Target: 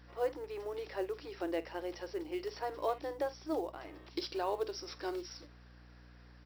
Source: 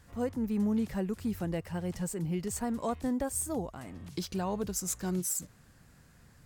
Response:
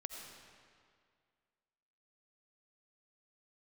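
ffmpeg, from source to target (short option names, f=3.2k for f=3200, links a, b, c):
-af "afftfilt=real='re*between(b*sr/4096,290,5800)':imag='im*between(b*sr/4096,290,5800)':win_size=4096:overlap=0.75,adynamicequalizer=threshold=0.00316:dfrequency=1400:dqfactor=0.78:tfrequency=1400:tqfactor=0.78:attack=5:release=100:ratio=0.375:range=1.5:mode=cutabove:tftype=bell,acrusher=bits=7:mode=log:mix=0:aa=0.000001,aecho=1:1:18|48:0.141|0.158,aeval=exprs='val(0)+0.00141*(sin(2*PI*60*n/s)+sin(2*PI*2*60*n/s)/2+sin(2*PI*3*60*n/s)/3+sin(2*PI*4*60*n/s)/4+sin(2*PI*5*60*n/s)/5)':c=same,volume=1dB"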